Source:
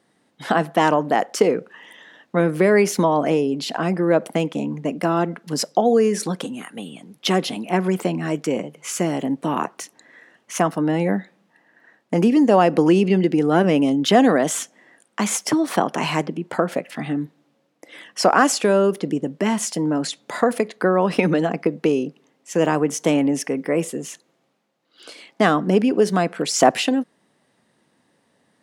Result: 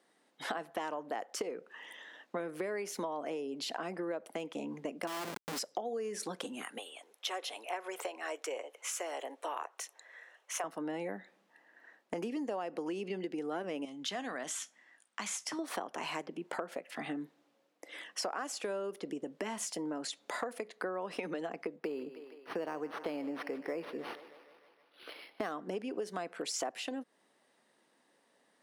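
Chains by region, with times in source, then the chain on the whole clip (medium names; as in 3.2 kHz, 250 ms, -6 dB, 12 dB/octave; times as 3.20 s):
5.07–5.59 s: companding laws mixed up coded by mu + Schmitt trigger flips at -31.5 dBFS
6.78–10.64 s: high-pass 470 Hz 24 dB/octave + band-stop 4.7 kHz, Q 11
13.85–15.59 s: low-pass 9.5 kHz + peaking EQ 440 Hz -11.5 dB 1.7 oct + feedback comb 63 Hz, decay 0.19 s, mix 50%
21.76–25.52 s: thinning echo 154 ms, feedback 68%, high-pass 290 Hz, level -17 dB + decimation joined by straight lines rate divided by 6×
whole clip: high-pass 340 Hz 12 dB/octave; compression 6:1, threshold -30 dBFS; trim -5.5 dB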